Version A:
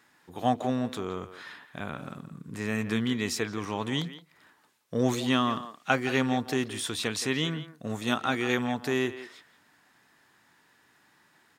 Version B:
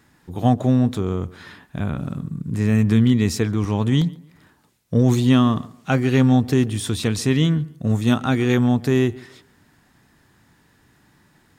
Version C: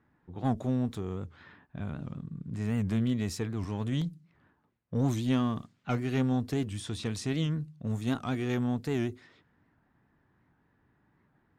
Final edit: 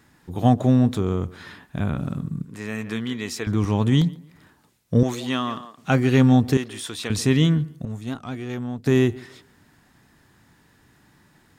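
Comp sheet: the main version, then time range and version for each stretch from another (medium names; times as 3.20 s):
B
2.45–3.47 s: from A
5.03–5.78 s: from A
6.57–7.10 s: from A
7.85–8.86 s: from C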